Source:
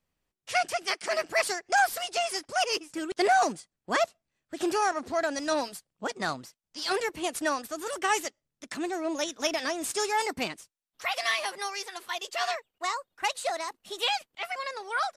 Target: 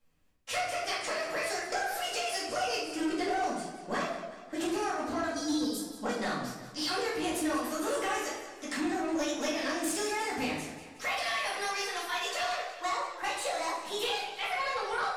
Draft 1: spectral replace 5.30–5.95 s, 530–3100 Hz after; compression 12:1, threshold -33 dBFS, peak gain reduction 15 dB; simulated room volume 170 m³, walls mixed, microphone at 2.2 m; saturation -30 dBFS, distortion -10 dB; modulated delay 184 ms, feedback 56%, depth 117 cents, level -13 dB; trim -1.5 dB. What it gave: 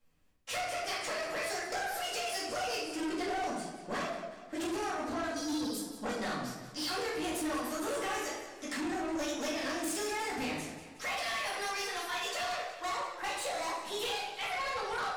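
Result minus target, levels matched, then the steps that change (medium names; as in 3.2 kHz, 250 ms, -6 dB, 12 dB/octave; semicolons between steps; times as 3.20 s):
saturation: distortion +7 dB
change: saturation -23 dBFS, distortion -17 dB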